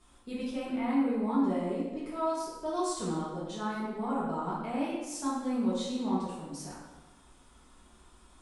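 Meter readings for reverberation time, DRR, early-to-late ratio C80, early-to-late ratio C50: 1.1 s, -9.0 dB, 3.0 dB, 0.0 dB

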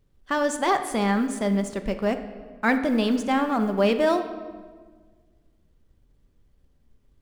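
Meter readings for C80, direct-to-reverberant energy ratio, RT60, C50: 11.5 dB, 7.0 dB, 1.5 s, 10.0 dB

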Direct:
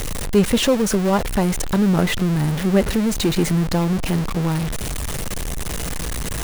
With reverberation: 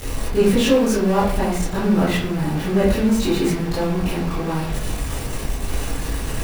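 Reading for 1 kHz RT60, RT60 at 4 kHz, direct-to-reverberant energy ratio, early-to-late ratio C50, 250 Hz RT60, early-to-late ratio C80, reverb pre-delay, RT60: 0.55 s, 0.30 s, -11.0 dB, 1.5 dB, 0.75 s, 6.5 dB, 17 ms, 0.60 s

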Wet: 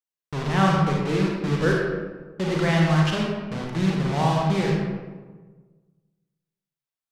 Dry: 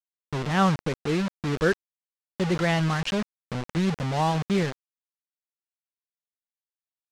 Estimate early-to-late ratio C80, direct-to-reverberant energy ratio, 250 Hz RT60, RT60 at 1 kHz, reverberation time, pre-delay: 2.5 dB, -2.0 dB, 1.6 s, 1.3 s, 1.4 s, 34 ms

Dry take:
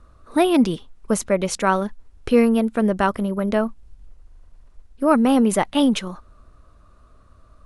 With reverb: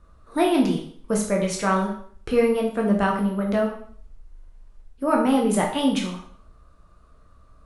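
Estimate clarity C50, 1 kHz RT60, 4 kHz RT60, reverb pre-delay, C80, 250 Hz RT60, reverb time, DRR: 6.0 dB, 0.55 s, 0.50 s, 5 ms, 9.5 dB, 0.50 s, 0.55 s, -1.0 dB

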